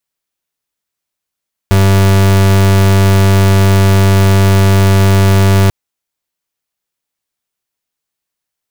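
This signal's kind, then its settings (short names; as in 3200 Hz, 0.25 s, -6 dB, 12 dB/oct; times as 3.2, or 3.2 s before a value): pulse 97.2 Hz, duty 37% -7.5 dBFS 3.99 s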